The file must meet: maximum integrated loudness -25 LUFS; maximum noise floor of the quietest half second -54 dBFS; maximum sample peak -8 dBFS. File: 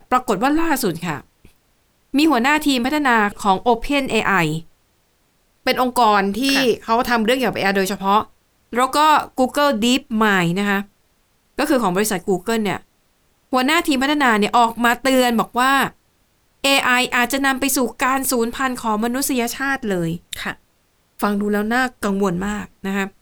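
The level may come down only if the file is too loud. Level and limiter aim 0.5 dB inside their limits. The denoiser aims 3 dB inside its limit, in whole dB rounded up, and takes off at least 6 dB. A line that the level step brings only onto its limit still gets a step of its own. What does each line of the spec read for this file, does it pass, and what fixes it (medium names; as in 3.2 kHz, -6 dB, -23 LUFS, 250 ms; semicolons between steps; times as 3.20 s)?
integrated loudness -18.0 LUFS: fail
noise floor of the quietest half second -62 dBFS: pass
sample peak -4.5 dBFS: fail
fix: trim -7.5 dB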